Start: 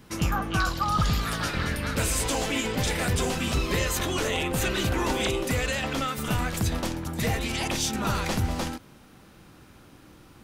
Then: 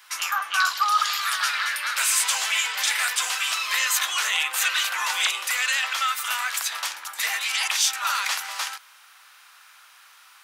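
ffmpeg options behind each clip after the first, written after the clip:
ffmpeg -i in.wav -af "highpass=frequency=1100:width=0.5412,highpass=frequency=1100:width=1.3066,volume=7.5dB" out.wav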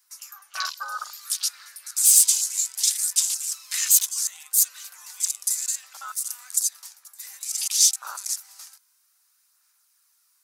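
ffmpeg -i in.wav -af "aexciter=amount=7.6:drive=3.2:freq=4500,afwtdn=0.112,aphaser=in_gain=1:out_gain=1:delay=2:decay=0.26:speed=0.62:type=sinusoidal,volume=-9.5dB" out.wav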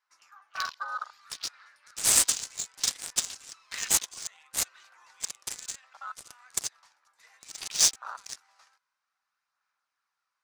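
ffmpeg -i in.wav -af "adynamicsmooth=sensitivity=1.5:basefreq=1900,volume=-1dB" out.wav

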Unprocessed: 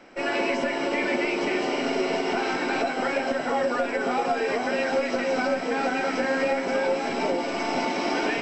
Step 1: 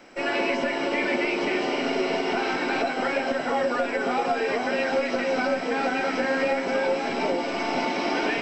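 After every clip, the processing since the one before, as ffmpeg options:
ffmpeg -i in.wav -filter_complex "[0:a]acrossover=split=5000[link_01][link_02];[link_02]acompressor=threshold=-60dB:ratio=4:attack=1:release=60[link_03];[link_01][link_03]amix=inputs=2:normalize=0,highshelf=frequency=4900:gain=8" out.wav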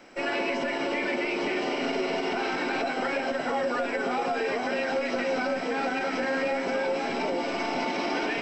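ffmpeg -i in.wav -af "alimiter=limit=-18dB:level=0:latency=1:release=32,volume=-1.5dB" out.wav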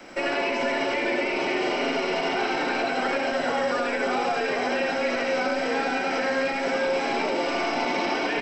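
ffmpeg -i in.wav -filter_complex "[0:a]acrossover=split=150|340|1000|2800[link_01][link_02][link_03][link_04][link_05];[link_01]acompressor=threshold=-54dB:ratio=4[link_06];[link_02]acompressor=threshold=-47dB:ratio=4[link_07];[link_03]acompressor=threshold=-35dB:ratio=4[link_08];[link_04]acompressor=threshold=-39dB:ratio=4[link_09];[link_05]acompressor=threshold=-45dB:ratio=4[link_10];[link_06][link_07][link_08][link_09][link_10]amix=inputs=5:normalize=0,aecho=1:1:84:0.668,volume=6.5dB" out.wav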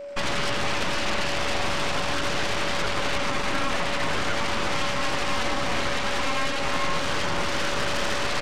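ffmpeg -i in.wav -af "aeval=exprs='0.224*(cos(1*acos(clip(val(0)/0.224,-1,1)))-cos(1*PI/2))+0.1*(cos(3*acos(clip(val(0)/0.224,-1,1)))-cos(3*PI/2))+0.0501*(cos(4*acos(clip(val(0)/0.224,-1,1)))-cos(4*PI/2))+0.0316*(cos(8*acos(clip(val(0)/0.224,-1,1)))-cos(8*PI/2))':channel_layout=same,aeval=exprs='val(0)+0.02*sin(2*PI*570*n/s)':channel_layout=same" out.wav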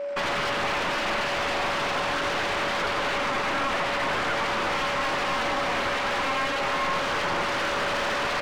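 ffmpeg -i in.wav -filter_complex "[0:a]asplit=2[link_01][link_02];[link_02]highpass=frequency=720:poles=1,volume=24dB,asoftclip=type=tanh:threshold=-8dB[link_03];[link_01][link_03]amix=inputs=2:normalize=0,lowpass=frequency=1600:poles=1,volume=-6dB,volume=-7.5dB" out.wav

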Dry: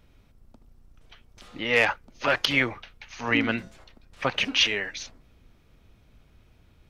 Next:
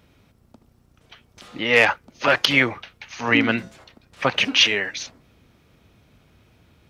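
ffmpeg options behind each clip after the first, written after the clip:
ffmpeg -i in.wav -af "highpass=88,volume=5.5dB" out.wav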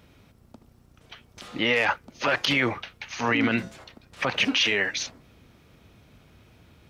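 ffmpeg -i in.wav -af "alimiter=limit=-14dB:level=0:latency=1:release=40,volume=1.5dB" out.wav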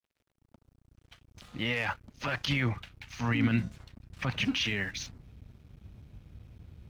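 ffmpeg -i in.wav -af "asubboost=boost=11:cutoff=150,aeval=exprs='sgn(val(0))*max(abs(val(0))-0.00376,0)':channel_layout=same,volume=-8dB" out.wav

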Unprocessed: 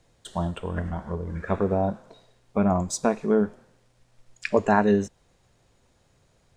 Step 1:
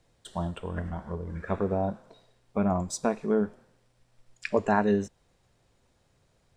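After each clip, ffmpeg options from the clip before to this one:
ffmpeg -i in.wav -af "bandreject=frequency=6600:width=17,volume=-4dB" out.wav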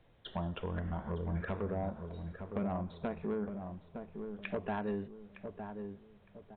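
ffmpeg -i in.wav -filter_complex "[0:a]acompressor=threshold=-34dB:ratio=4,aresample=8000,asoftclip=type=tanh:threshold=-29.5dB,aresample=44100,asplit=2[link_01][link_02];[link_02]adelay=911,lowpass=frequency=1100:poles=1,volume=-6.5dB,asplit=2[link_03][link_04];[link_04]adelay=911,lowpass=frequency=1100:poles=1,volume=0.37,asplit=2[link_05][link_06];[link_06]adelay=911,lowpass=frequency=1100:poles=1,volume=0.37,asplit=2[link_07][link_08];[link_08]adelay=911,lowpass=frequency=1100:poles=1,volume=0.37[link_09];[link_01][link_03][link_05][link_07][link_09]amix=inputs=5:normalize=0,volume=1.5dB" out.wav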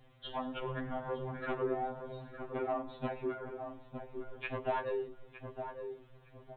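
ffmpeg -i in.wav -af "afftfilt=real='re*2.45*eq(mod(b,6),0)':imag='im*2.45*eq(mod(b,6),0)':win_size=2048:overlap=0.75,volume=6dB" out.wav

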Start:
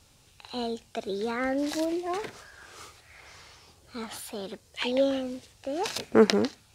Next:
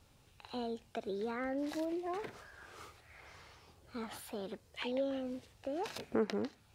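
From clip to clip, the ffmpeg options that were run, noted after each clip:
ffmpeg -i in.wav -af "acompressor=threshold=-34dB:ratio=2,equalizer=frequency=6900:width_type=o:width=2.2:gain=-8.5,volume=-3.5dB" out.wav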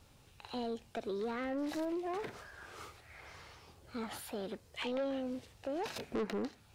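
ffmpeg -i in.wav -af "asoftclip=type=tanh:threshold=-34dB,volume=3dB" out.wav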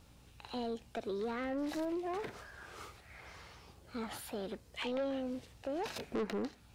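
ffmpeg -i in.wav -af "aeval=exprs='val(0)+0.000708*(sin(2*PI*60*n/s)+sin(2*PI*2*60*n/s)/2+sin(2*PI*3*60*n/s)/3+sin(2*PI*4*60*n/s)/4+sin(2*PI*5*60*n/s)/5)':channel_layout=same" out.wav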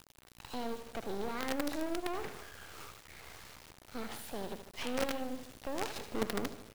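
ffmpeg -i in.wav -af "aecho=1:1:76|152|228|304|380|456:0.316|0.174|0.0957|0.0526|0.0289|0.0159,acrusher=bits=6:dc=4:mix=0:aa=0.000001,volume=3.5dB" out.wav

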